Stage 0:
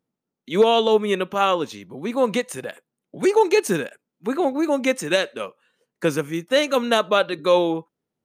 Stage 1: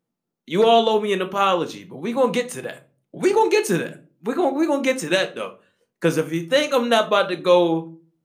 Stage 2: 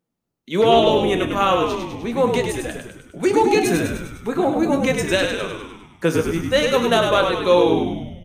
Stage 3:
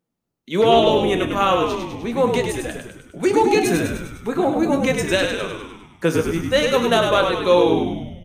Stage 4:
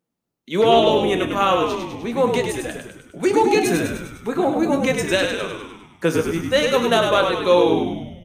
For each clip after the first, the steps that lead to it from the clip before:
simulated room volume 200 m³, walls furnished, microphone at 0.74 m
frequency-shifting echo 101 ms, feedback 59%, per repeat -60 Hz, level -5 dB
no audible change
bass shelf 78 Hz -8 dB

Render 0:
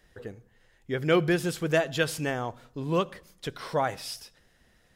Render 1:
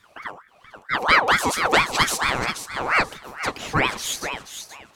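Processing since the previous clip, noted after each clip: dynamic bell 6.6 kHz, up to +6 dB, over -49 dBFS, Q 0.77; on a send: thinning echo 481 ms, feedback 21%, high-pass 230 Hz, level -8.5 dB; on the sum: ring modulator with a swept carrier 1.2 kHz, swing 50%, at 4.4 Hz; trim +8.5 dB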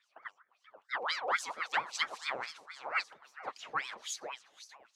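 LFO band-pass sine 3.7 Hz 520–6400 Hz; trim -7.5 dB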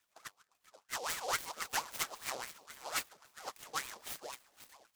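delay time shaken by noise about 4.7 kHz, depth 0.079 ms; trim -3.5 dB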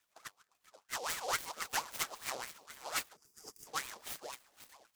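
time-frequency box 3.16–3.67 s, 490–4600 Hz -16 dB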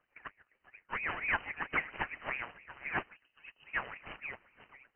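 frequency inversion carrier 3 kHz; trim +4.5 dB

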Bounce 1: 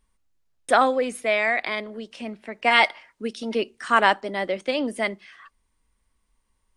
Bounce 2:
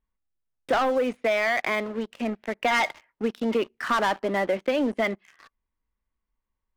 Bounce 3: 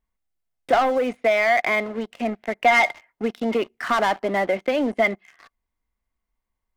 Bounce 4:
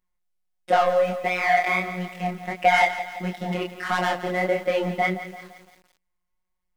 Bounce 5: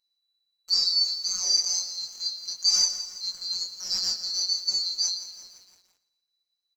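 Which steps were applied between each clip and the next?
low-pass 2.5 kHz 12 dB/octave; waveshaping leveller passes 3; compression, threshold -15 dBFS, peak gain reduction 6.5 dB; trim -5.5 dB
small resonant body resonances 710/2100 Hz, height 8 dB, ringing for 30 ms; trim +1.5 dB
robot voice 181 Hz; chorus 1.5 Hz, depth 7.2 ms; bit-crushed delay 170 ms, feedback 55%, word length 8-bit, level -12.5 dB; trim +4 dB
split-band scrambler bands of 4 kHz; flange 0.42 Hz, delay 6.8 ms, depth 5 ms, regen -56%; feedback delay 115 ms, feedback 49%, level -16.5 dB

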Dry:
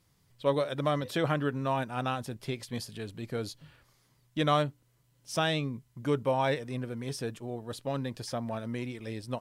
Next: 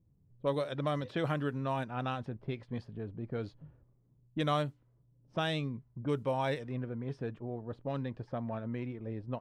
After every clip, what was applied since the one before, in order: level-controlled noise filter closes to 350 Hz, open at -24.5 dBFS; bass shelf 200 Hz +3.5 dB; in parallel at +1 dB: compression, threshold -38 dBFS, peak gain reduction 16 dB; on the sum: trim -7 dB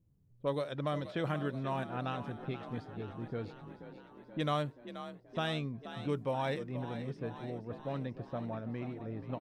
frequency-shifting echo 480 ms, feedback 65%, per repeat +42 Hz, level -12 dB; trim -2 dB

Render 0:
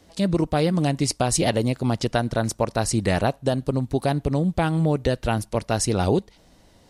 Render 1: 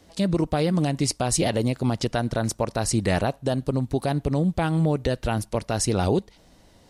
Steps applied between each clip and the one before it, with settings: peak limiter -12.5 dBFS, peak gain reduction 5 dB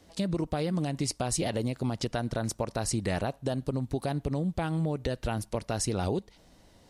compression 3:1, threshold -23 dBFS, peak gain reduction 5 dB; trim -3.5 dB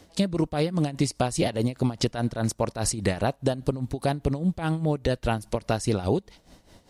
tremolo 4.9 Hz, depth 77%; trim +7.5 dB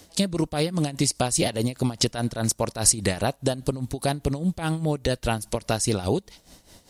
treble shelf 4.2 kHz +12 dB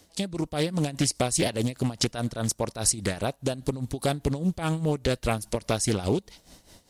level rider gain up to 6.5 dB; loudspeaker Doppler distortion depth 0.41 ms; trim -7 dB

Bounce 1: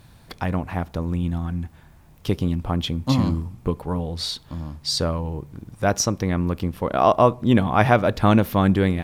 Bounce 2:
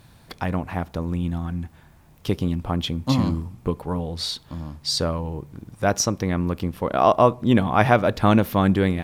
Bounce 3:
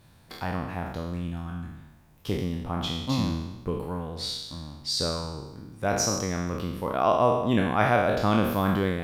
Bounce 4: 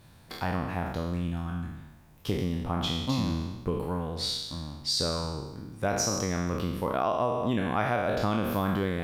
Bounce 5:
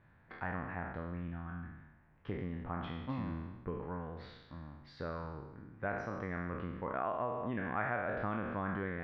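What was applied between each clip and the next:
bass shelf 74 Hz -5 dB
spectral sustain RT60 1.01 s; trim -7.5 dB
compression 6:1, threshold -25 dBFS, peak gain reduction 9 dB; trim +1.5 dB
four-pole ladder low-pass 2.1 kHz, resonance 50%; trim -1 dB

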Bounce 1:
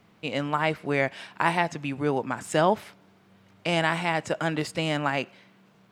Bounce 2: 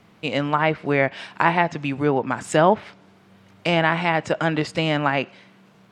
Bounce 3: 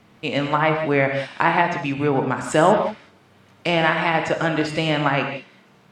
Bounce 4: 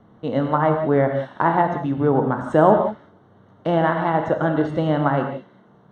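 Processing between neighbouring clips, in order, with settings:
low-pass that closes with the level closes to 2.8 kHz, closed at -20.5 dBFS; trim +5.5 dB
gated-style reverb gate 210 ms flat, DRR 4 dB
boxcar filter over 18 samples; trim +2.5 dB

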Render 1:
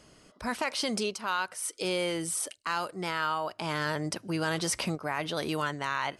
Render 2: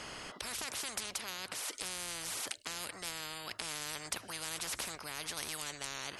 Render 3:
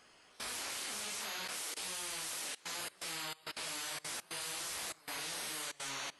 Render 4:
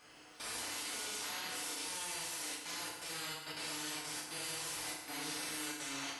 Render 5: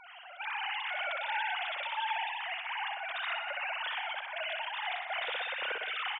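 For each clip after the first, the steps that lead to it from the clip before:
tone controls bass -7 dB, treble -8 dB; spectrum-flattening compressor 10:1
phase randomisation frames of 200 ms; bass shelf 170 Hz -8.5 dB; level held to a coarse grid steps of 22 dB; trim +2.5 dB
peak limiter -37 dBFS, peak gain reduction 8 dB; crackle 150 per s -58 dBFS; FDN reverb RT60 1.1 s, low-frequency decay 1.1×, high-frequency decay 0.8×, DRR -5 dB; trim -1 dB
formants replaced by sine waves; on a send: feedback delay 61 ms, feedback 59%, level -7 dB; on the sum: trim +5 dB

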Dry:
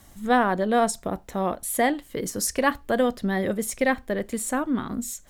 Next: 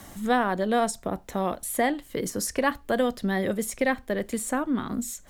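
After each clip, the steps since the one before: three bands compressed up and down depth 40%; trim -2 dB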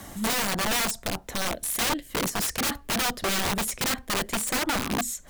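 Chebyshev shaper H 7 -28 dB, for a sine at -9 dBFS; time-frequency box 1.49–2.08 s, 710–1500 Hz -13 dB; integer overflow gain 26.5 dB; trim +6 dB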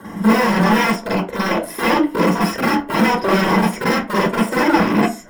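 coarse spectral quantiser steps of 15 dB; reverberation RT60 0.35 s, pre-delay 41 ms, DRR -5.5 dB; trim -7 dB

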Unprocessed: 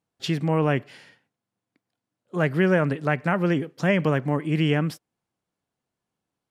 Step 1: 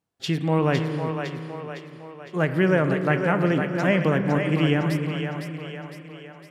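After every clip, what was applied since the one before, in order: two-band feedback delay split 400 Hz, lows 298 ms, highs 508 ms, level -6 dB; spring tank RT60 2.4 s, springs 31 ms, chirp 40 ms, DRR 9.5 dB; endings held to a fixed fall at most 220 dB/s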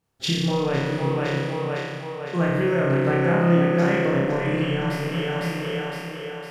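bass shelf 72 Hz +11.5 dB; compression, threshold -27 dBFS, peak gain reduction 12 dB; flutter echo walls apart 5 m, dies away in 1.3 s; trim +3.5 dB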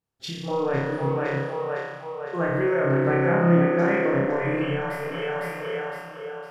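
spectral noise reduction 11 dB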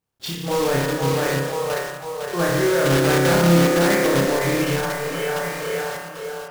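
block-companded coder 3-bit; in parallel at -4.5 dB: hard clipper -18.5 dBFS, distortion -12 dB

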